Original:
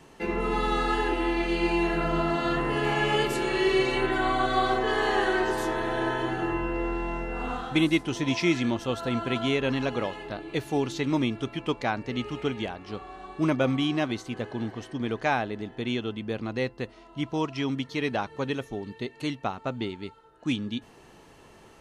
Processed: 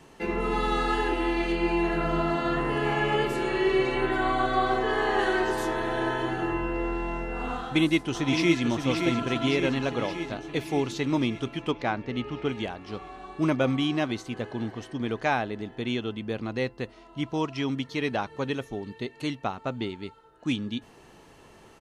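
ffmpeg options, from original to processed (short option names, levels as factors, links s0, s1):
-filter_complex "[0:a]asettb=1/sr,asplit=3[s0][s1][s2];[s0]atrim=end=1.524[s3];[s1]atrim=start=1.52:end=5.19,asetpts=PTS-STARTPTS,afade=t=in:d=0.004:c=qsin,afade=t=out:st=3.666:d=0.004:c=qsin,acrossover=split=2600[s4][s5];[s5]acompressor=threshold=0.00794:ratio=4:attack=1:release=60[s6];[s4][s6]amix=inputs=2:normalize=0[s7];[s2]atrim=start=5.186[s8];[s3][s7]acrossfade=d=0.004:c1=hsin:c2=qsin[s9];[s9][s8]acrossfade=d=0.004:c1=qsin:c2=hsin,asplit=2[s10][s11];[s11]afade=t=in:st=7.57:d=0.01,afade=t=out:st=8.65:d=0.01,aecho=0:1:570|1140|1710|2280|2850|3420|3990|4560|5130|5700:0.530884|0.345075|0.224299|0.145794|0.0947662|0.061598|0.0400387|0.0260252|0.0169164|0.0109956[s12];[s10][s12]amix=inputs=2:normalize=0,asettb=1/sr,asplit=3[s13][s14][s15];[s13]atrim=end=11.714[s16];[s14]atrim=start=11.71:end=12.49,asetpts=PTS-STARTPTS,afade=t=in:d=0.004:c=qsin,afade=t=out:st=0.776:d=0.004:c=qsin,adynamicsmooth=sensitivity=1:basefreq=4400[s17];[s15]atrim=start=12.486[s18];[s16][s17]acrossfade=d=0.004:c1=hsin:c2=qsin[s19];[s19][s18]acrossfade=d=0.004:c1=qsin:c2=hsin"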